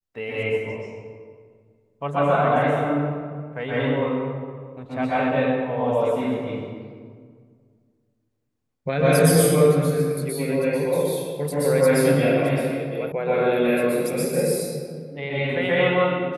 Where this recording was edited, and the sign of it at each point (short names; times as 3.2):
13.12 sound cut off